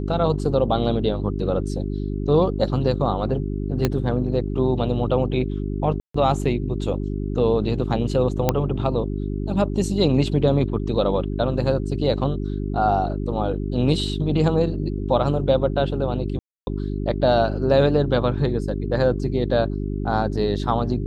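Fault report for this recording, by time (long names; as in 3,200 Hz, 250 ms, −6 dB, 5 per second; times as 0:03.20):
mains hum 50 Hz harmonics 8 −26 dBFS
0:03.85: click −6 dBFS
0:06.00–0:06.14: drop-out 144 ms
0:08.49: click −4 dBFS
0:16.39–0:16.67: drop-out 280 ms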